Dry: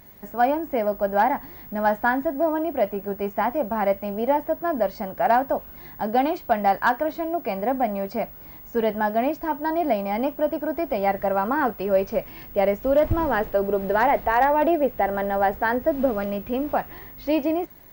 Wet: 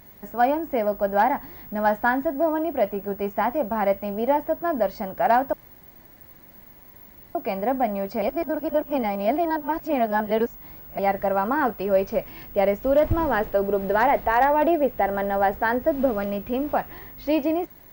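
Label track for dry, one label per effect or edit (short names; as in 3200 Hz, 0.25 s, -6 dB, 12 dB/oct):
5.530000	7.350000	room tone
8.220000	10.990000	reverse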